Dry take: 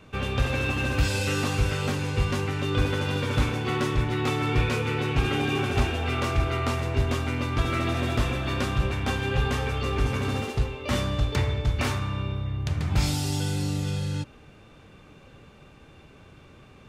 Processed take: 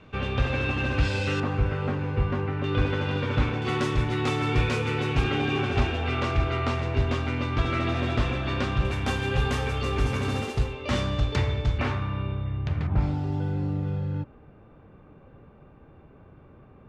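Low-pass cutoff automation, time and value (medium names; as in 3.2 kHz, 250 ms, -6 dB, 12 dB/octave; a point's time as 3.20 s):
3.9 kHz
from 1.40 s 1.7 kHz
from 2.64 s 3.2 kHz
from 3.62 s 8.3 kHz
from 5.24 s 4.5 kHz
from 8.85 s 11 kHz
from 10.73 s 6.2 kHz
from 11.78 s 2.6 kHz
from 12.87 s 1.2 kHz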